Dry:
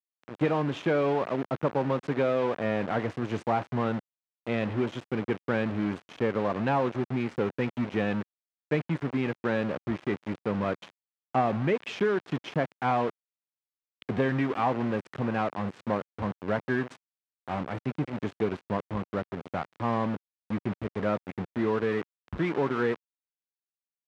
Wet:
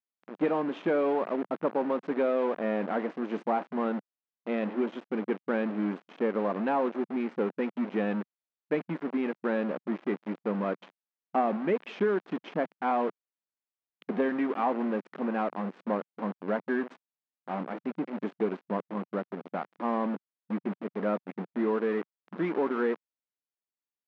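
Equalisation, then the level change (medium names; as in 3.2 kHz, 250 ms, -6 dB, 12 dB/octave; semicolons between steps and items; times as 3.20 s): brick-wall FIR high-pass 170 Hz; distance through air 94 m; treble shelf 2.5 kHz -8.5 dB; 0.0 dB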